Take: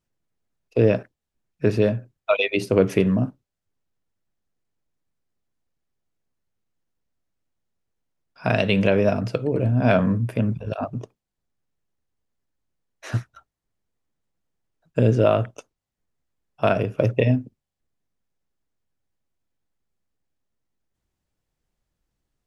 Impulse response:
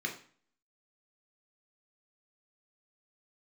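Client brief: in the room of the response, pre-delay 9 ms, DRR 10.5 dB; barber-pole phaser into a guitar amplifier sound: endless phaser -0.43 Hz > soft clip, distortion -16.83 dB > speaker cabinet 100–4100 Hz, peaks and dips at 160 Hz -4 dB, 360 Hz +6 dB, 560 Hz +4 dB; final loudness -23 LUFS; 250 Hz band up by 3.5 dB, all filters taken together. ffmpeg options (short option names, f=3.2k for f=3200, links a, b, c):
-filter_complex "[0:a]equalizer=f=250:t=o:g=4,asplit=2[a][b];[1:a]atrim=start_sample=2205,adelay=9[c];[b][c]afir=irnorm=-1:irlink=0,volume=-14.5dB[d];[a][d]amix=inputs=2:normalize=0,asplit=2[e][f];[f]afreqshift=-0.43[g];[e][g]amix=inputs=2:normalize=1,asoftclip=threshold=-12.5dB,highpass=100,equalizer=f=160:t=q:w=4:g=-4,equalizer=f=360:t=q:w=4:g=6,equalizer=f=560:t=q:w=4:g=4,lowpass=f=4.1k:w=0.5412,lowpass=f=4.1k:w=1.3066,volume=0.5dB"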